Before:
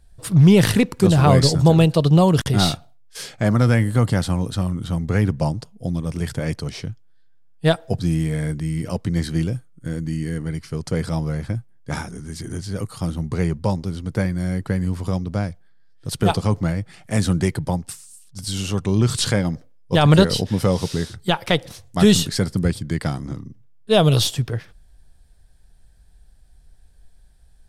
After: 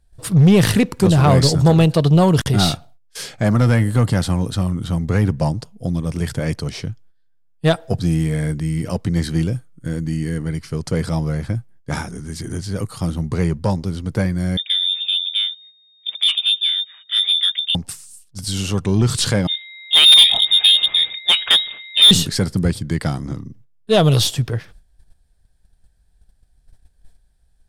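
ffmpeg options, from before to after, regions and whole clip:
-filter_complex "[0:a]asettb=1/sr,asplit=3[a][b][c];[a]atrim=end=14.574[d];[b]atrim=start=14.57:end=17.75,asetpts=PTS-STARTPTS,afade=t=in:d=0.004:c=qsin,afade=t=out:st=3.176:d=0.004:c=qsin,lowpass=f=3.1k:t=q:w=0.5098,lowpass=f=3.1k:t=q:w=0.6013,lowpass=f=3.1k:t=q:w=0.9,lowpass=f=3.1k:t=q:w=2.563,afreqshift=-3700,acontrast=51,aderivative[e];[c]atrim=start=17.746[f];[d][e]acrossfade=d=0.004:c1=hsin:c2=qsin[g];[g][f]acrossfade=d=0.004:c1=qsin:c2=hsin,asettb=1/sr,asplit=3[h][i][j];[h]atrim=end=19.474[k];[i]atrim=start=19.47:end=22.11,asetpts=PTS-STARTPTS,afade=t=in:d=0.004:c=qsin,afade=t=out:st=2.636:d=0.004:c=qsin,aeval=exprs='val(0)+0.00891*sin(2*PI*1700*n/s)':c=same,lowpass=f=3.2k:t=q:w=0.5098,lowpass=f=3.2k:t=q:w=0.6013,lowpass=f=3.2k:t=q:w=0.9,lowpass=f=3.2k:t=q:w=2.563,afreqshift=-3800,adynamicequalizer=threshold=0.0501:dfrequency=2100:dqfactor=0.7:tfrequency=2100:tqfactor=0.7:attack=5:release=100:ratio=0.375:range=3:mode=boostabove:tftype=highshelf[l];[j]atrim=start=22.106[m];[k][l]acrossfade=d=0.004:c1=hsin:c2=qsin[n];[n][m]acrossfade=d=0.004:c1=qsin:c2=hsin,acontrast=65,agate=range=-10dB:threshold=-39dB:ratio=16:detection=peak,volume=-3.5dB"

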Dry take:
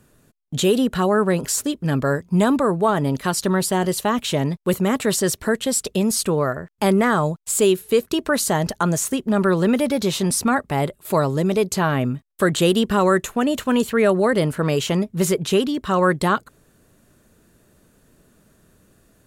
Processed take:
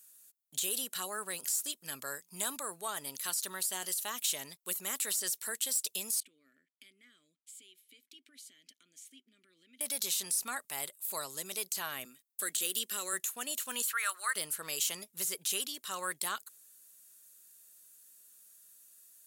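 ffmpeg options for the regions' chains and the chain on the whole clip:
-filter_complex "[0:a]asettb=1/sr,asplit=3[a][b][c];[a]atrim=end=6.204[d];[b]atrim=start=6.2:end=9.81,asetpts=PTS-STARTPTS,afade=t=in:d=0.004:c=qsin,afade=t=out:st=3.606:d=0.004:c=qsin,acompressor=threshold=-23dB:ratio=6:attack=3.2:release=140:knee=1:detection=peak,asplit=3[e][f][g];[e]bandpass=f=270:t=q:w=8,volume=0dB[h];[f]bandpass=f=2.29k:t=q:w=8,volume=-6dB[i];[g]bandpass=f=3.01k:t=q:w=8,volume=-9dB[j];[h][i][j]amix=inputs=3:normalize=0[k];[c]atrim=start=9.806[l];[d][k]acrossfade=d=0.004:c1=hsin:c2=qsin[m];[m][l]acrossfade=d=0.004:c1=qsin:c2=hsin,asettb=1/sr,asplit=3[n][o][p];[n]atrim=end=12.054[q];[o]atrim=start=12.05:end=13.13,asetpts=PTS-STARTPTS,afade=t=in:d=0.004:c=qsin,afade=t=out:st=1.076:d=0.004:c=qsin,highpass=f=200:w=0.5412,highpass=f=200:w=1.3066,equalizer=f=880:w=1.6:g=-9.5[r];[p]atrim=start=13.126[s];[q][r]acrossfade=d=0.004:c1=hsin:c2=qsin[t];[t][s]acrossfade=d=0.004:c1=qsin:c2=hsin,asettb=1/sr,asplit=3[u][v][w];[u]atrim=end=13.824[x];[v]atrim=start=13.82:end=14.36,asetpts=PTS-STARTPTS,afade=t=in:d=0.004:c=qsin,afade=t=out:st=0.536:d=0.004:c=qsin,deesser=0.25,highpass=f=1.3k:t=q:w=3.5[y];[w]atrim=start=14.356[z];[x][y]acrossfade=d=0.004:c1=hsin:c2=qsin[aa];[aa][z]acrossfade=d=0.004:c1=qsin:c2=hsin,aderivative,deesser=0.55,highshelf=f=4.4k:g=9,volume=-3dB"

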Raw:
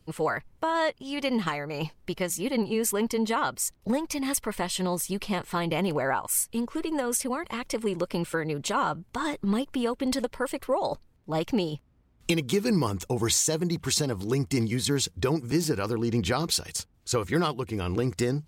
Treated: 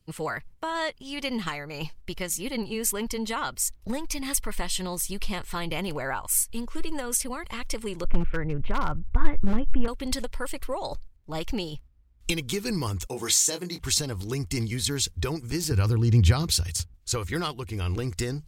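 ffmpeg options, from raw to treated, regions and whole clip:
-filter_complex "[0:a]asettb=1/sr,asplit=3[a][b][c];[a]atrim=end=8.044[d];[b]atrim=start=8.04:end=9.88,asetpts=PTS-STARTPTS,afade=t=in:d=0.004:c=qsin,afade=t=out:st=1.836:d=0.004:c=qsin,lowpass=f=2.4k:w=0.5412,lowpass=f=2.4k:w=1.3066,aemphasis=mode=reproduction:type=bsi,aeval=exprs='0.15*(abs(mod(val(0)/0.15+3,4)-2)-1)':c=same[e];[c]atrim=start=9.876[f];[d][e]acrossfade=d=0.004:c1=hsin:c2=qsin[g];[g][f]acrossfade=d=0.004:c1=qsin:c2=hsin,asettb=1/sr,asplit=3[h][i][j];[h]atrim=end=13.064[k];[i]atrim=start=13.06:end=13.8,asetpts=PTS-STARTPTS,afade=t=in:d=0.004:c=qsin,afade=t=out:st=0.736:d=0.004:c=qsin,highpass=230,asplit=2[l][m];[m]adelay=22,volume=-7.5dB[n];[l][n]amix=inputs=2:normalize=0,atrim=end_sample=32634[o];[j]atrim=start=13.796[p];[k][o]acrossfade=d=0.004:c1=hsin:c2=qsin[q];[q][p]acrossfade=d=0.004:c1=qsin:c2=hsin,asettb=1/sr,asplit=3[r][s][t];[r]atrim=end=15.714[u];[s]atrim=start=15.71:end=16.94,asetpts=PTS-STARTPTS,afade=t=in:d=0.004:c=qsin,afade=t=out:st=1.226:d=0.004:c=qsin,highpass=51,equalizer=f=100:t=o:w=1.9:g=12.5[v];[t]atrim=start=16.936[w];[u][v]acrossfade=d=0.004:c1=hsin:c2=qsin[x];[x][w]acrossfade=d=0.004:c1=qsin:c2=hsin,equalizer=f=570:w=0.38:g=-7.5,agate=range=-7dB:threshold=-50dB:ratio=16:detection=peak,asubboost=boost=6.5:cutoff=58,volume=2.5dB"

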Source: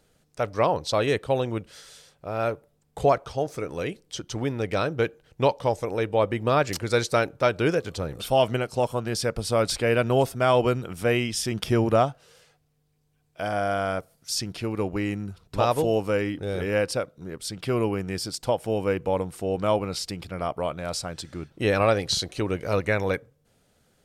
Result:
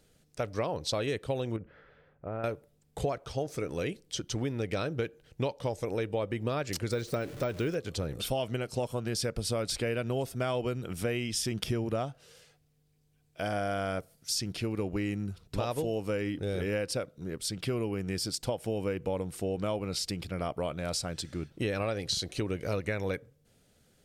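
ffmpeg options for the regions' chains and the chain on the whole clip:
-filter_complex "[0:a]asettb=1/sr,asplit=3[a][b][c];[a]atrim=end=1.564[d];[b]atrim=start=1.56:end=2.44,asetpts=PTS-STARTPTS,afade=t=in:d=0.004:c=qsin,afade=t=out:st=0.876:d=0.004:c=qsin,lowpass=f=1.8k:w=0.5412,lowpass=f=1.8k:w=1.3066,acompressor=threshold=-29dB:ratio=6:attack=3.2:release=140:knee=1:detection=peak[e];[c]atrim=start=2.436[f];[d][e]acrossfade=d=0.004:c1=hsin:c2=qsin[g];[g][f]acrossfade=d=0.004:c1=qsin:c2=hsin,asettb=1/sr,asplit=3[h][i][j];[h]atrim=end=6.914[k];[i]atrim=start=6.91:end=7.75,asetpts=PTS-STARTPTS,afade=t=in:d=0.004:c=qsin,afade=t=out:st=0.836:d=0.004:c=qsin,aeval=exprs='val(0)+0.5*0.015*sgn(val(0))':c=same,bandreject=f=900:w=16,deesser=0.85[l];[j]atrim=start=7.746[m];[k][l]acrossfade=d=0.004:c1=hsin:c2=qsin[n];[n][m]acrossfade=d=0.004:c1=qsin:c2=hsin,equalizer=f=980:w=1:g=-6,acompressor=threshold=-28dB:ratio=6"

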